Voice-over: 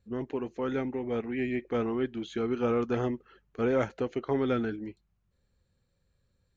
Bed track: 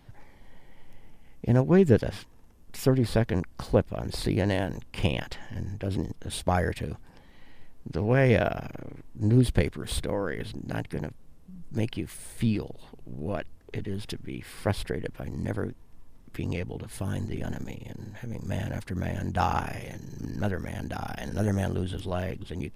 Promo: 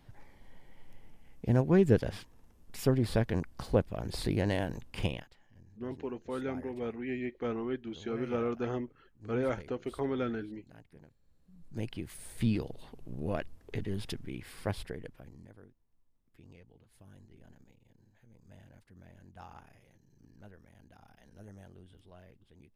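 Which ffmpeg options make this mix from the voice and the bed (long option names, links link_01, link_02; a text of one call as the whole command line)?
ffmpeg -i stem1.wav -i stem2.wav -filter_complex "[0:a]adelay=5700,volume=-5dB[link_01];[1:a]volume=16.5dB,afade=type=out:start_time=4.99:duration=0.3:silence=0.112202,afade=type=in:start_time=11.19:duration=1.45:silence=0.0891251,afade=type=out:start_time=14.02:duration=1.47:silence=0.0794328[link_02];[link_01][link_02]amix=inputs=2:normalize=0" out.wav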